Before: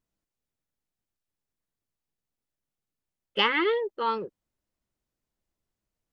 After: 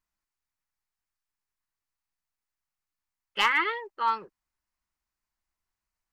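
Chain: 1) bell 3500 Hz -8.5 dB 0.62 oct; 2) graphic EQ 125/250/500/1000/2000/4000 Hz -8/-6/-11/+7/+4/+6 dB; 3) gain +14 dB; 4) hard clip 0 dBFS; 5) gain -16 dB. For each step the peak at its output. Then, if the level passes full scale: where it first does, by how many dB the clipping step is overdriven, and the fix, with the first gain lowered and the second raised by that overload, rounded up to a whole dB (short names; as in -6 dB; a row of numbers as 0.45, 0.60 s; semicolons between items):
-14.0, -8.0, +6.0, 0.0, -16.0 dBFS; step 3, 6.0 dB; step 3 +8 dB, step 5 -10 dB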